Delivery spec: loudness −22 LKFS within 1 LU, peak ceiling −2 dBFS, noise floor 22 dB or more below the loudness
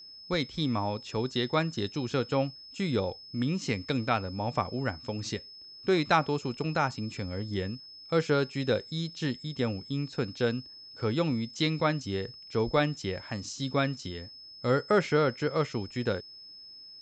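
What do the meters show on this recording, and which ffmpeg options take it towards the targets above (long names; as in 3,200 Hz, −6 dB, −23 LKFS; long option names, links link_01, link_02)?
interfering tone 5,200 Hz; level of the tone −46 dBFS; integrated loudness −30.5 LKFS; sample peak −11.5 dBFS; target loudness −22.0 LKFS
→ -af "bandreject=frequency=5200:width=30"
-af "volume=8.5dB"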